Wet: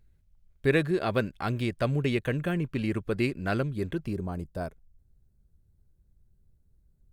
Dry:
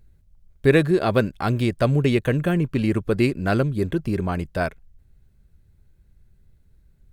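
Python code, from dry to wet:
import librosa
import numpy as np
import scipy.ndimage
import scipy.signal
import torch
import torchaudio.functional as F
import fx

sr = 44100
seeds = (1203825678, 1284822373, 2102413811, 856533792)

y = fx.peak_eq(x, sr, hz=2300.0, db=fx.steps((0.0, 3.5), (4.13, -12.5)), octaves=1.8)
y = y * 10.0 ** (-8.0 / 20.0)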